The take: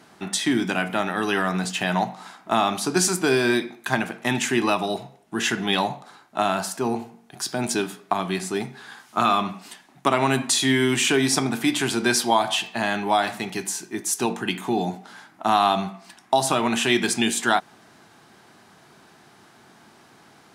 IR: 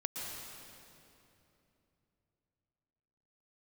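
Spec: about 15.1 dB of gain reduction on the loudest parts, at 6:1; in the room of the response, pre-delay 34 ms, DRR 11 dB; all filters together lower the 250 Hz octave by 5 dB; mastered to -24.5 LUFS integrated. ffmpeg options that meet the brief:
-filter_complex "[0:a]equalizer=f=250:t=o:g=-6.5,acompressor=threshold=0.0251:ratio=6,asplit=2[s0][s1];[1:a]atrim=start_sample=2205,adelay=34[s2];[s1][s2]afir=irnorm=-1:irlink=0,volume=0.224[s3];[s0][s3]amix=inputs=2:normalize=0,volume=3.35"

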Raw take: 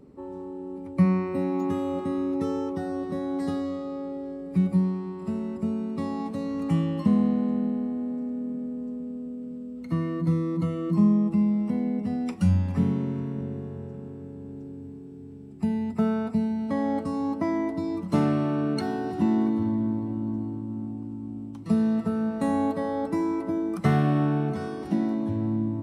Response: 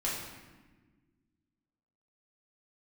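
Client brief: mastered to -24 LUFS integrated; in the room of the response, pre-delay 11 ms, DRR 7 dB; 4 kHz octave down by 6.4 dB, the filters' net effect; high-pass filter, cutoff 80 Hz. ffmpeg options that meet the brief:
-filter_complex "[0:a]highpass=80,equalizer=f=4000:t=o:g=-8.5,asplit=2[s0][s1];[1:a]atrim=start_sample=2205,adelay=11[s2];[s1][s2]afir=irnorm=-1:irlink=0,volume=0.224[s3];[s0][s3]amix=inputs=2:normalize=0,volume=1.26"

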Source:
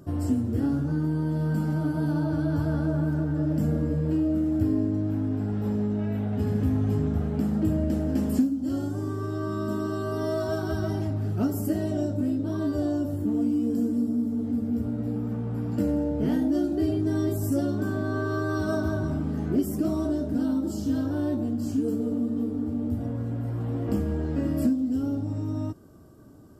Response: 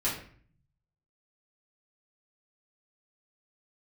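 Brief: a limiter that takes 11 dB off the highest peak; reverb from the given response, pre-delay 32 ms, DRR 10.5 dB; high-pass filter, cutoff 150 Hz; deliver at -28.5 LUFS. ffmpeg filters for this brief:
-filter_complex "[0:a]highpass=150,alimiter=limit=0.0631:level=0:latency=1,asplit=2[s0][s1];[1:a]atrim=start_sample=2205,adelay=32[s2];[s1][s2]afir=irnorm=-1:irlink=0,volume=0.126[s3];[s0][s3]amix=inputs=2:normalize=0,volume=1.41"

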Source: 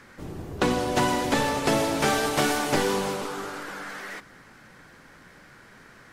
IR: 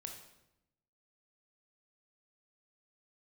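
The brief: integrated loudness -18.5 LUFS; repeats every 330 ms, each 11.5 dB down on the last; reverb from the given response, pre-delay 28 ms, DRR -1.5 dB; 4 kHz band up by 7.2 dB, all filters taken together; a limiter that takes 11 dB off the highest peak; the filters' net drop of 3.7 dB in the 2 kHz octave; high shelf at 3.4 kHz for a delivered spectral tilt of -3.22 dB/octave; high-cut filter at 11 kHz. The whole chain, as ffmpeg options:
-filter_complex "[0:a]lowpass=11000,equalizer=f=2000:t=o:g=-8.5,highshelf=f=3400:g=4.5,equalizer=f=4000:t=o:g=8.5,alimiter=limit=0.133:level=0:latency=1,aecho=1:1:330|660|990:0.266|0.0718|0.0194,asplit=2[s0][s1];[1:a]atrim=start_sample=2205,adelay=28[s2];[s1][s2]afir=irnorm=-1:irlink=0,volume=1.78[s3];[s0][s3]amix=inputs=2:normalize=0,volume=1.88"

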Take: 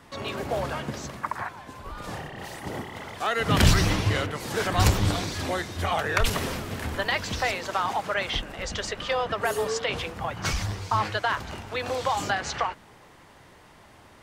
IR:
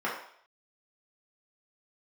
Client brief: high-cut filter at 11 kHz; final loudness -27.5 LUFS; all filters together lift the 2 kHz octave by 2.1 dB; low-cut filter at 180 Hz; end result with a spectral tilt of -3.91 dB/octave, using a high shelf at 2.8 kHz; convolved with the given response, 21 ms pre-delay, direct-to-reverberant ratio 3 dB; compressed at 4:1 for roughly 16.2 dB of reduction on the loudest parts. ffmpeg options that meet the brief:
-filter_complex "[0:a]highpass=180,lowpass=11000,equalizer=f=2000:t=o:g=5,highshelf=f=2800:g=-6.5,acompressor=threshold=0.0112:ratio=4,asplit=2[s0][s1];[1:a]atrim=start_sample=2205,adelay=21[s2];[s1][s2]afir=irnorm=-1:irlink=0,volume=0.224[s3];[s0][s3]amix=inputs=2:normalize=0,volume=3.55"

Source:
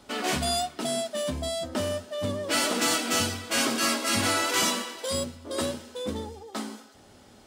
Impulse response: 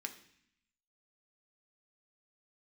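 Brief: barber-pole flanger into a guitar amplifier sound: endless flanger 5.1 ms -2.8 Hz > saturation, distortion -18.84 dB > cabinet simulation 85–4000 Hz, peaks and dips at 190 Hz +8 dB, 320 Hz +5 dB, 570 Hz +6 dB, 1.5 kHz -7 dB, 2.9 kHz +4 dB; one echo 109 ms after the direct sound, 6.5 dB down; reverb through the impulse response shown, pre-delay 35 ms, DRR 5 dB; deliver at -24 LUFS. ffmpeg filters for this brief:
-filter_complex "[0:a]aecho=1:1:109:0.473,asplit=2[s0][s1];[1:a]atrim=start_sample=2205,adelay=35[s2];[s1][s2]afir=irnorm=-1:irlink=0,volume=0.668[s3];[s0][s3]amix=inputs=2:normalize=0,asplit=2[s4][s5];[s5]adelay=5.1,afreqshift=-2.8[s6];[s4][s6]amix=inputs=2:normalize=1,asoftclip=threshold=0.1,highpass=85,equalizer=f=190:t=q:w=4:g=8,equalizer=f=320:t=q:w=4:g=5,equalizer=f=570:t=q:w=4:g=6,equalizer=f=1500:t=q:w=4:g=-7,equalizer=f=2900:t=q:w=4:g=4,lowpass=f=4000:w=0.5412,lowpass=f=4000:w=1.3066,volume=1.88"

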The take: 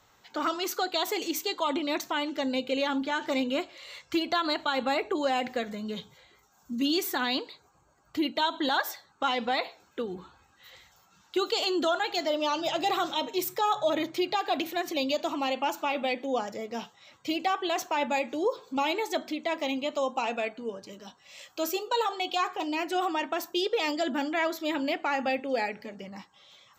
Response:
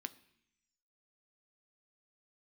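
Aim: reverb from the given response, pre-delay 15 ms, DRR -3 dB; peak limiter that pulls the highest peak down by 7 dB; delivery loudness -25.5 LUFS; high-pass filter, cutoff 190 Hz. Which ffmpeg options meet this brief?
-filter_complex "[0:a]highpass=190,alimiter=limit=0.0841:level=0:latency=1,asplit=2[s0][s1];[1:a]atrim=start_sample=2205,adelay=15[s2];[s1][s2]afir=irnorm=-1:irlink=0,volume=1.88[s3];[s0][s3]amix=inputs=2:normalize=0,volume=1.41"

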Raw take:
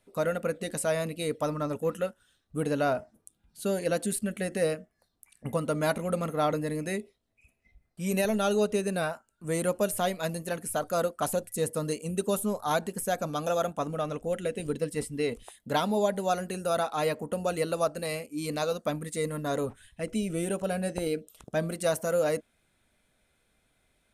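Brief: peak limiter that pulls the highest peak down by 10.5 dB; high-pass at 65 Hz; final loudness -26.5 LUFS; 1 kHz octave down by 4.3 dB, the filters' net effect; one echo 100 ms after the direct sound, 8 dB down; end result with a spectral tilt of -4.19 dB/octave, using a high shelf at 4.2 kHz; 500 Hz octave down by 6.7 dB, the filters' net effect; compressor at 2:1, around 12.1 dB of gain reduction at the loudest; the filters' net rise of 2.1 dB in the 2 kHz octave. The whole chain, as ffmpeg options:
-af "highpass=65,equalizer=f=500:t=o:g=-7,equalizer=f=1000:t=o:g=-5,equalizer=f=2000:t=o:g=4,highshelf=f=4200:g=5.5,acompressor=threshold=0.00398:ratio=2,alimiter=level_in=3.55:limit=0.0631:level=0:latency=1,volume=0.282,aecho=1:1:100:0.398,volume=8.41"

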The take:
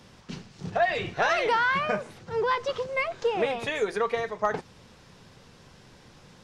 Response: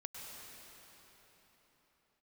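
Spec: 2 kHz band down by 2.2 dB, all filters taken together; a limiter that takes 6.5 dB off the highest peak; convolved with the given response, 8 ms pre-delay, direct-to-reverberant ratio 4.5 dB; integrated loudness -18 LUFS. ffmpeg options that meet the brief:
-filter_complex "[0:a]equalizer=f=2000:t=o:g=-3,alimiter=limit=0.106:level=0:latency=1,asplit=2[s0][s1];[1:a]atrim=start_sample=2205,adelay=8[s2];[s1][s2]afir=irnorm=-1:irlink=0,volume=0.75[s3];[s0][s3]amix=inputs=2:normalize=0,volume=3.55"

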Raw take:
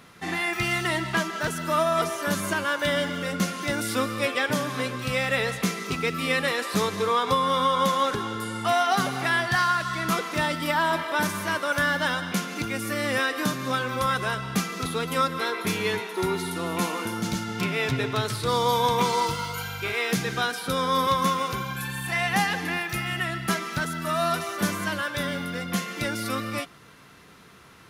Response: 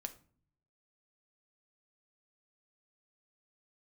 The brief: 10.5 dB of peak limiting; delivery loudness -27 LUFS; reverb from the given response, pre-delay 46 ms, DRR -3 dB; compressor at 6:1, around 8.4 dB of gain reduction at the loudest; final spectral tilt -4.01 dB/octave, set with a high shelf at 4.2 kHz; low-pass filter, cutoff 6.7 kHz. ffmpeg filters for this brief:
-filter_complex "[0:a]lowpass=6700,highshelf=f=4200:g=-6.5,acompressor=threshold=0.0398:ratio=6,alimiter=level_in=1.41:limit=0.0631:level=0:latency=1,volume=0.708,asplit=2[s0][s1];[1:a]atrim=start_sample=2205,adelay=46[s2];[s1][s2]afir=irnorm=-1:irlink=0,volume=1.88[s3];[s0][s3]amix=inputs=2:normalize=0,volume=1.5"

